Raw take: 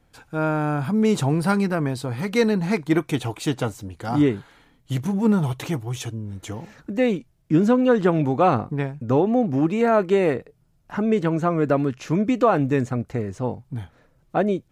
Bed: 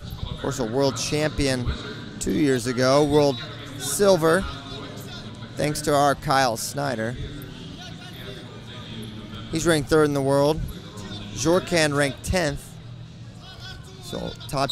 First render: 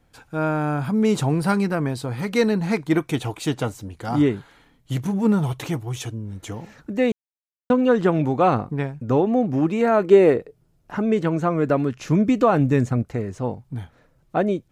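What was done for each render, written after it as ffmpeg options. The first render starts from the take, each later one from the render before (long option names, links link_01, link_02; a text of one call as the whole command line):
ffmpeg -i in.wav -filter_complex "[0:a]asettb=1/sr,asplit=3[link_01][link_02][link_03];[link_01]atrim=end=10.044[link_04];[link_02]atrim=start=10.04:end=10.95,asetpts=PTS-STARTPTS,afade=type=in:duration=0.004:curve=qsin,afade=type=out:start_time=0.906:duration=0.004:curve=qsin,equalizer=frequency=400:width=1.5:gain=7[link_05];[link_03]atrim=start=10.946[link_06];[link_04][link_05]acrossfade=duration=0.004:curve1=hsin:curve2=qsin[link_07];[link_07][link_06]acrossfade=duration=0.004:curve1=qsin:curve2=hsin,asettb=1/sr,asplit=3[link_08][link_09][link_10];[link_08]atrim=end=11.994[link_11];[link_09]atrim=start=11.99:end=13.03,asetpts=PTS-STARTPTS,afade=type=in:duration=0.004:curve=qsin,afade=type=out:start_time=1.036:duration=0.004:curve=qsin,bass=frequency=250:gain=5,treble=frequency=4000:gain=2[link_12];[link_10]atrim=start=13.026[link_13];[link_11][link_12]acrossfade=duration=0.004:curve1=hsin:curve2=qsin[link_14];[link_14][link_13]acrossfade=duration=0.004:curve1=qsin:curve2=hsin,asplit=3[link_15][link_16][link_17];[link_15]atrim=end=7.12,asetpts=PTS-STARTPTS,afade=type=out:start_time=7.116:duration=0.004:curve=hsin[link_18];[link_16]atrim=start=7.12:end=7.7,asetpts=PTS-STARTPTS,volume=0[link_19];[link_17]atrim=start=7.7,asetpts=PTS-STARTPTS,afade=type=in:duration=0.004:curve=hsin[link_20];[link_18][link_19][link_20]concat=n=3:v=0:a=1" out.wav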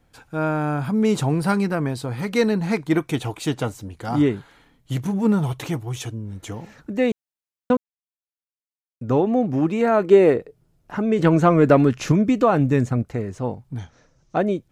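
ffmpeg -i in.wav -filter_complex "[0:a]asettb=1/sr,asplit=3[link_01][link_02][link_03];[link_01]atrim=end=11.194[link_04];[link_02]atrim=start=11.19:end=12.12,asetpts=PTS-STARTPTS,afade=type=in:duration=0.004:curve=qsin,afade=type=out:start_time=0.926:duration=0.004:curve=qsin,acontrast=69[link_05];[link_03]atrim=start=12.116[link_06];[link_04][link_05]acrossfade=duration=0.004:curve1=hsin:curve2=qsin[link_07];[link_07][link_06]acrossfade=duration=0.004:curve1=qsin:curve2=hsin,asettb=1/sr,asplit=3[link_08][link_09][link_10];[link_08]atrim=end=13.784[link_11];[link_09]atrim=start=13.78:end=14.38,asetpts=PTS-STARTPTS,afade=type=in:duration=0.004:curve=qsin,afade=type=out:start_time=0.596:duration=0.004:curve=qsin,lowpass=frequency=6000:width_type=q:width=6.3[link_12];[link_10]atrim=start=14.376[link_13];[link_11][link_12]acrossfade=duration=0.004:curve1=hsin:curve2=qsin[link_14];[link_14][link_13]acrossfade=duration=0.004:curve1=qsin:curve2=hsin,asplit=3[link_15][link_16][link_17];[link_15]atrim=end=7.77,asetpts=PTS-STARTPTS,afade=type=out:start_time=7.766:duration=0.004:curve=hsin[link_18];[link_16]atrim=start=7.77:end=9.01,asetpts=PTS-STARTPTS,volume=0[link_19];[link_17]atrim=start=9.01,asetpts=PTS-STARTPTS,afade=type=in:duration=0.004:curve=hsin[link_20];[link_18][link_19][link_20]concat=n=3:v=0:a=1" out.wav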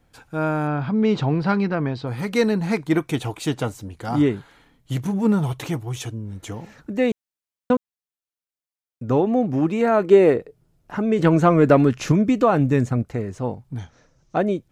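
ffmpeg -i in.wav -filter_complex "[0:a]asettb=1/sr,asplit=3[link_01][link_02][link_03];[link_01]atrim=end=0.674[link_04];[link_02]atrim=start=0.67:end=2.07,asetpts=PTS-STARTPTS,afade=type=in:duration=0.004:curve=qsin,afade=type=out:start_time=1.396:duration=0.004:curve=qsin,lowpass=frequency=4600:width=0.5412,lowpass=frequency=4600:width=1.3066[link_05];[link_03]atrim=start=2.066[link_06];[link_04][link_05]acrossfade=duration=0.004:curve1=hsin:curve2=qsin[link_07];[link_07][link_06]acrossfade=duration=0.004:curve1=qsin:curve2=hsin" out.wav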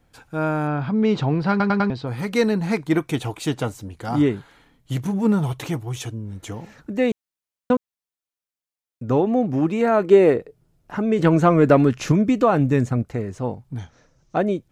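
ffmpeg -i in.wav -filter_complex "[0:a]asplit=5[link_01][link_02][link_03][link_04][link_05];[link_01]atrim=end=1.602[link_06];[link_02]atrim=start=1.498:end=1.602[link_07];[link_03]atrim=start=1.498:end=1.602[link_08];[link_04]atrim=start=1.498:end=1.602[link_09];[link_05]atrim=start=1.898[link_10];[link_06][link_07]acrossfade=duration=0.004:curve1=hsin:curve2=hsin[link_11];[link_11][link_08]acrossfade=duration=0.004:curve1=hsin:curve2=hsin[link_12];[link_12][link_09]acrossfade=duration=0.004:curve1=hsin:curve2=hsin[link_13];[link_13][link_10]acrossfade=duration=0.004:curve1=hsin:curve2=hsin" out.wav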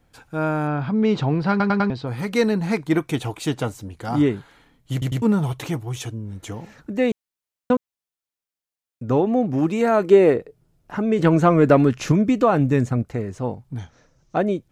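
ffmpeg -i in.wav -filter_complex "[0:a]asettb=1/sr,asplit=3[link_01][link_02][link_03];[link_01]atrim=end=9.584[link_04];[link_02]atrim=start=9.58:end=10.11,asetpts=PTS-STARTPTS,afade=type=in:duration=0.004:curve=qsin,afade=type=out:start_time=0.526:duration=0.004:curve=qsin,bass=frequency=250:gain=0,treble=frequency=4000:gain=6[link_05];[link_03]atrim=start=10.106[link_06];[link_04][link_05]acrossfade=duration=0.004:curve1=hsin:curve2=qsin[link_07];[link_07][link_06]acrossfade=duration=0.004:curve1=qsin:curve2=hsin,asplit=4[link_08][link_09][link_10][link_11];[link_08]atrim=end=5.022[link_12];[link_09]atrim=start=4.918:end=5.022[link_13];[link_10]atrim=start=4.918:end=5.022[link_14];[link_11]atrim=start=5.218[link_15];[link_12][link_13]acrossfade=duration=0.004:curve1=hsin:curve2=hsin[link_16];[link_16][link_14]acrossfade=duration=0.004:curve1=hsin:curve2=hsin[link_17];[link_17][link_15]acrossfade=duration=0.004:curve1=hsin:curve2=hsin" out.wav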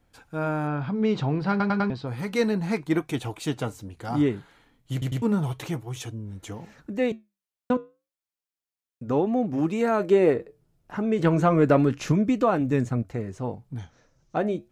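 ffmpeg -i in.wav -af "flanger=delay=3:depth=6.4:regen=-81:speed=0.32:shape=triangular" out.wav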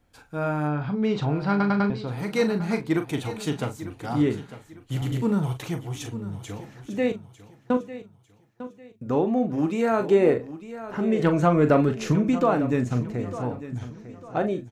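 ffmpeg -i in.wav -filter_complex "[0:a]asplit=2[link_01][link_02];[link_02]adelay=40,volume=-9dB[link_03];[link_01][link_03]amix=inputs=2:normalize=0,aecho=1:1:900|1800|2700:0.2|0.0658|0.0217" out.wav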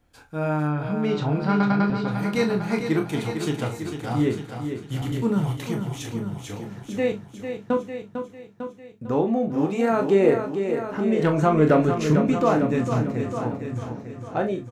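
ffmpeg -i in.wav -filter_complex "[0:a]asplit=2[link_01][link_02];[link_02]adelay=26,volume=-7.5dB[link_03];[link_01][link_03]amix=inputs=2:normalize=0,aecho=1:1:450|900|1350:0.398|0.104|0.0269" out.wav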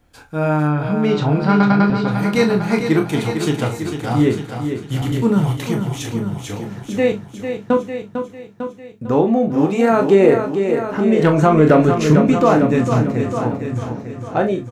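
ffmpeg -i in.wav -af "volume=7dB,alimiter=limit=-2dB:level=0:latency=1" out.wav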